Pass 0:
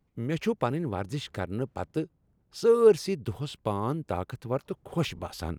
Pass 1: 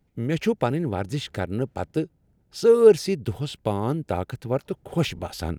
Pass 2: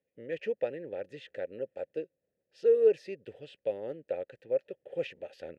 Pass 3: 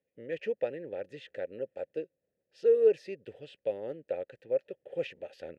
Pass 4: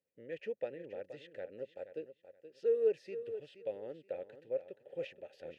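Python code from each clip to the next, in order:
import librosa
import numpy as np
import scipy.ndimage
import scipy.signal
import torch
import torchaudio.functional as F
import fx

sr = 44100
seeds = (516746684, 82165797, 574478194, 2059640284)

y1 = fx.peak_eq(x, sr, hz=1100.0, db=-11.0, octaves=0.21)
y1 = y1 * librosa.db_to_amplitude(5.0)
y2 = fx.vowel_filter(y1, sr, vowel='e')
y3 = y2
y4 = fx.echo_feedback(y3, sr, ms=475, feedback_pct=22, wet_db=-12)
y4 = y4 * librosa.db_to_amplitude(-7.0)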